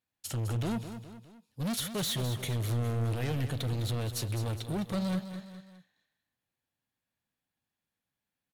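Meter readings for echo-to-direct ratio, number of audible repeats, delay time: -9.5 dB, 3, 0.207 s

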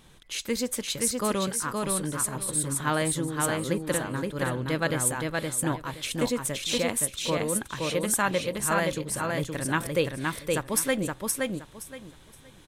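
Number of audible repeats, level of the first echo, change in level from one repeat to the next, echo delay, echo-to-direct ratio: 3, -3.0 dB, -13.0 dB, 0.52 s, -3.0 dB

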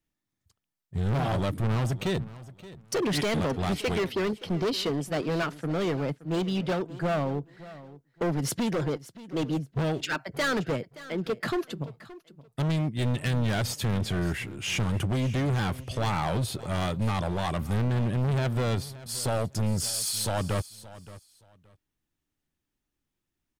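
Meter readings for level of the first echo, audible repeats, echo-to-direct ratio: -17.5 dB, 2, -17.5 dB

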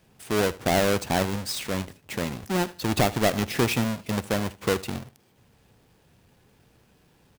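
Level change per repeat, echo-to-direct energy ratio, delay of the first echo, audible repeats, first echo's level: -12.5 dB, -19.0 dB, 76 ms, 2, -19.0 dB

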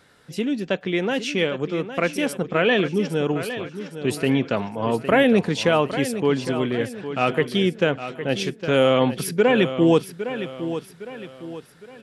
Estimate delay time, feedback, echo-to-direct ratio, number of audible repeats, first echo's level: 0.81 s, 41%, -10.0 dB, 4, -11.0 dB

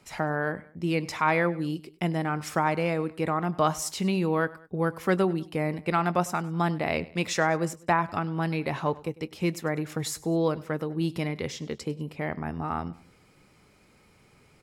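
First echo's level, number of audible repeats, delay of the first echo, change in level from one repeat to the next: -20.5 dB, 2, 99 ms, -6.0 dB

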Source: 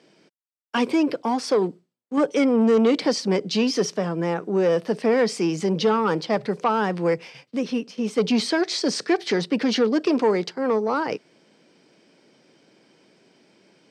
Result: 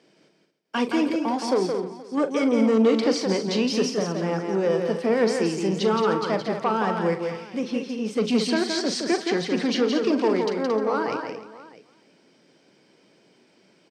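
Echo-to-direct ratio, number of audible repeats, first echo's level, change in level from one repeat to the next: -2.5 dB, 8, -11.5 dB, no steady repeat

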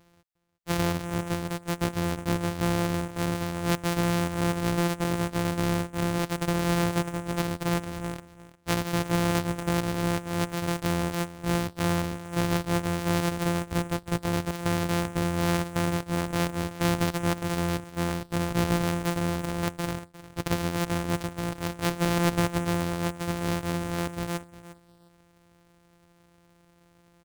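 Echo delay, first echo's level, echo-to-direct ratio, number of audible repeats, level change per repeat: 0.354 s, -16.0 dB, -16.0 dB, 2, -15.5 dB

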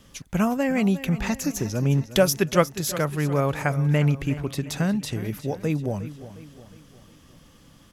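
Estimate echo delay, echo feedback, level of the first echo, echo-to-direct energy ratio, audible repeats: 0.358 s, 48%, -14.5 dB, -13.5 dB, 4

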